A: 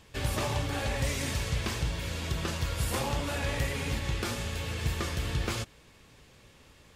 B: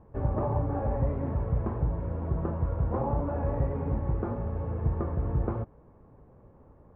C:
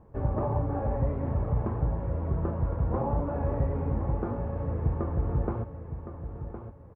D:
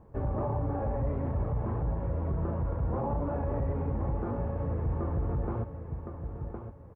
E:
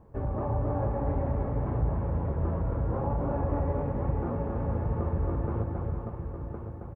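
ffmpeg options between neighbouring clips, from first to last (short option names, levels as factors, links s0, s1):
-af "lowpass=f=1000:w=0.5412,lowpass=f=1000:w=1.3066,volume=1.5"
-af "aecho=1:1:1063|2126|3189:0.316|0.098|0.0304"
-af "alimiter=limit=0.0708:level=0:latency=1:release=30"
-af "aecho=1:1:270|459|591.3|683.9|748.7:0.631|0.398|0.251|0.158|0.1"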